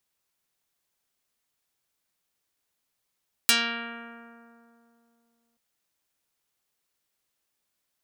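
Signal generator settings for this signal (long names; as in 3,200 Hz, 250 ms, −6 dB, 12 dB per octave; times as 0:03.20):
Karplus-Strong string A#3, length 2.08 s, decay 2.86 s, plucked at 0.45, dark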